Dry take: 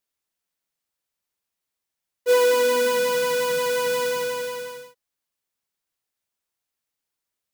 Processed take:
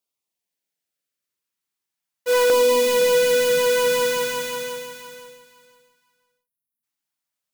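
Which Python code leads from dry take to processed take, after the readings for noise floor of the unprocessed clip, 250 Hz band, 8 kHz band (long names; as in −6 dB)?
−85 dBFS, +3.5 dB, +4.5 dB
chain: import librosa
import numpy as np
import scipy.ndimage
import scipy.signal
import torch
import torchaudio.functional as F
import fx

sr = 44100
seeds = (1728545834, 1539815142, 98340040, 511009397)

y = scipy.signal.sosfilt(scipy.signal.butter(2, 110.0, 'highpass', fs=sr, output='sos'), x)
y = fx.spec_erase(y, sr, start_s=5.37, length_s=1.46, low_hz=280.0, high_hz=9300.0)
y = fx.leveller(y, sr, passes=1)
y = fx.filter_lfo_notch(y, sr, shape='saw_down', hz=0.4, low_hz=360.0, high_hz=1800.0, q=1.9)
y = fx.echo_feedback(y, sr, ms=514, feedback_pct=21, wet_db=-9.5)
y = y * 10.0 ** (1.0 / 20.0)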